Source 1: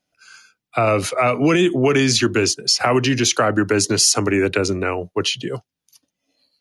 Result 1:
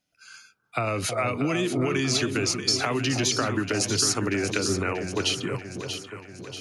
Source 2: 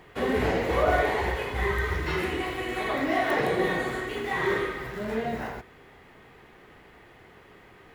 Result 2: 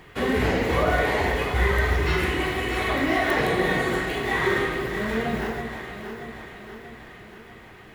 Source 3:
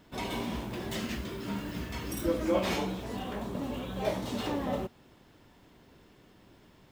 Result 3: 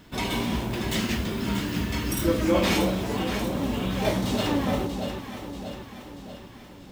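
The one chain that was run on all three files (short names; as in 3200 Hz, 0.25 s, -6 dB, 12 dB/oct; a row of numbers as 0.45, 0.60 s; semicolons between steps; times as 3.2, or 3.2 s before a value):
compressor, threshold -19 dBFS; bell 600 Hz -5 dB 1.9 oct; on a send: echo with dull and thin repeats by turns 0.318 s, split 840 Hz, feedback 73%, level -6 dB; on the sum: normalise peaks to -9 dBFS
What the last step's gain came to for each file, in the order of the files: -1.5, +5.5, +9.0 dB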